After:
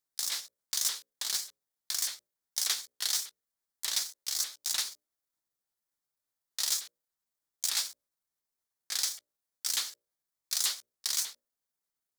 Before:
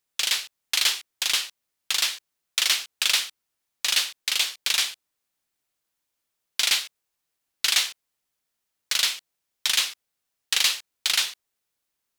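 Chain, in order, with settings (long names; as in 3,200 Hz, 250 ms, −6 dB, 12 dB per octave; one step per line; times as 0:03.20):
pitch shifter swept by a sawtooth +10.5 semitones, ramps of 296 ms
parametric band 2,700 Hz −10 dB 0.56 octaves
mains-hum notches 60/120/180/240/300/360/420/480/540/600 Hz
level −6 dB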